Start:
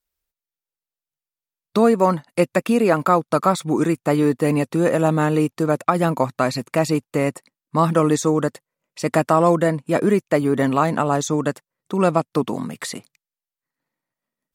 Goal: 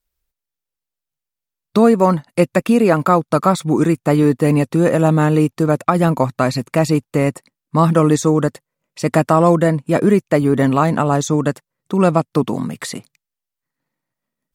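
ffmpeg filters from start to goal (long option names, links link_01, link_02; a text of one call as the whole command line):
ffmpeg -i in.wav -af "lowshelf=frequency=160:gain=9,volume=2dB" out.wav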